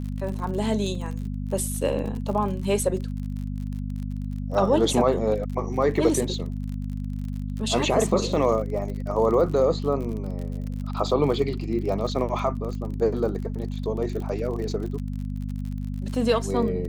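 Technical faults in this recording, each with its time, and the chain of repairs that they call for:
surface crackle 46 per second −32 dBFS
mains hum 50 Hz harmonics 5 −30 dBFS
0:00.95: drop-out 2.4 ms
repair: click removal
hum removal 50 Hz, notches 5
repair the gap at 0:00.95, 2.4 ms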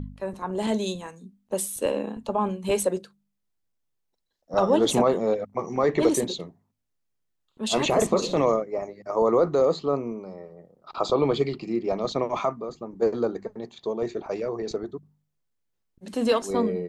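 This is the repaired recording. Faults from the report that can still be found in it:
none of them is left

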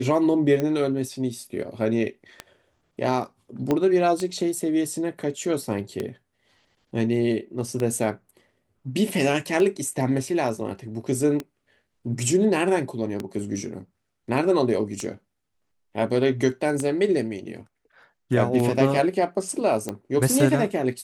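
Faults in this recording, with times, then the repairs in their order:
scratch tick 33 1/3 rpm −14 dBFS
0:03.71: click −11 dBFS
0:19.89: click −15 dBFS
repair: click removal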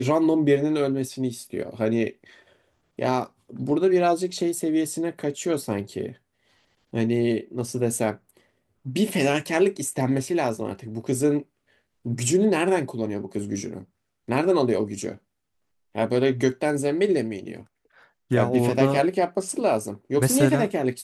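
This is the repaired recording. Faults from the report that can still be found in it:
0:03.71: click

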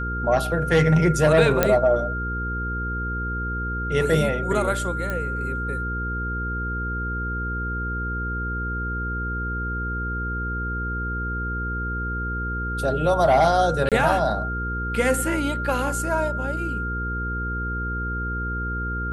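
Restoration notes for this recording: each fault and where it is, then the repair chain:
mains hum 60 Hz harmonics 8 −29 dBFS
whistle 1,400 Hz −28 dBFS
0:01.63: click −3 dBFS
0:05.10: click −15 dBFS
0:13.89–0:13.92: drop-out 27 ms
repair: click removal
hum removal 60 Hz, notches 8
notch filter 1,400 Hz, Q 30
repair the gap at 0:13.89, 27 ms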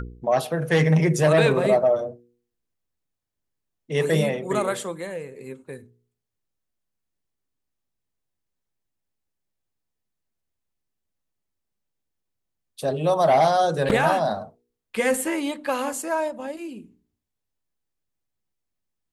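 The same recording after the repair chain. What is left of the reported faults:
none of them is left

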